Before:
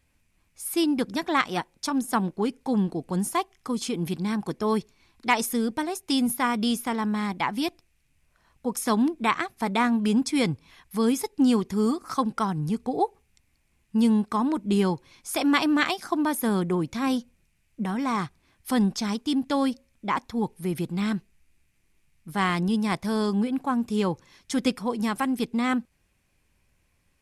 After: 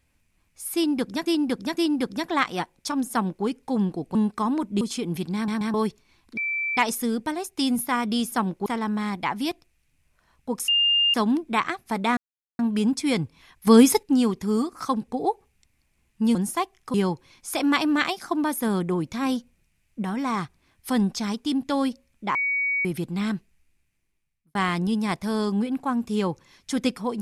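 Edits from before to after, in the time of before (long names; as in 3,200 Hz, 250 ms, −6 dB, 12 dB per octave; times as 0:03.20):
0:00.75–0:01.26: repeat, 3 plays
0:02.09–0:02.43: duplicate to 0:06.83
0:03.13–0:03.72: swap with 0:14.09–0:14.75
0:04.26: stutter in place 0.13 s, 3 plays
0:05.28: insert tone 2,330 Hz −24 dBFS 0.40 s
0:08.85: insert tone 2,810 Hz −17 dBFS 0.46 s
0:09.88: splice in silence 0.42 s
0:10.96–0:11.32: clip gain +9.5 dB
0:12.37–0:12.82: remove
0:20.16–0:20.66: beep over 2,250 Hz −21.5 dBFS
0:21.17–0:22.36: fade out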